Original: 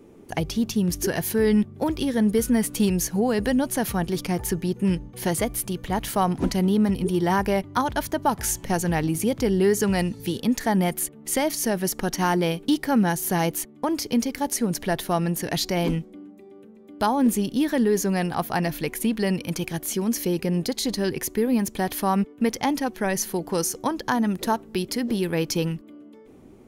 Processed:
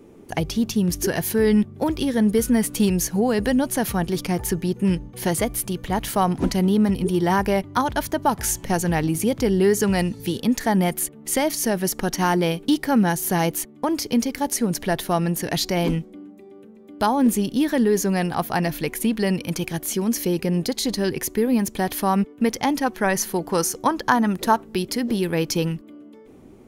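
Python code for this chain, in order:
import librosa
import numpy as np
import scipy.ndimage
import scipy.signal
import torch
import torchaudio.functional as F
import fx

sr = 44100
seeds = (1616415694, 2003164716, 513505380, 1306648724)

y = fx.dynamic_eq(x, sr, hz=1200.0, q=1.0, threshold_db=-37.0, ratio=4.0, max_db=6, at=(22.8, 24.64))
y = y * 10.0 ** (2.0 / 20.0)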